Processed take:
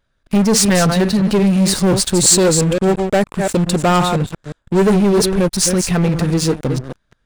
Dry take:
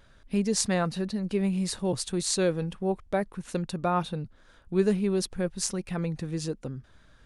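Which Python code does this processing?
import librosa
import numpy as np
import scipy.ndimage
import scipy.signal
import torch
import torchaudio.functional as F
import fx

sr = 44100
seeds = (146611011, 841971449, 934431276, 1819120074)

y = fx.reverse_delay(x, sr, ms=174, wet_db=-9.0)
y = fx.leveller(y, sr, passes=5)
y = fx.peak_eq(y, sr, hz=7600.0, db=9.5, octaves=0.22, at=(2.13, 4.84))
y = y * librosa.db_to_amplitude(-1.0)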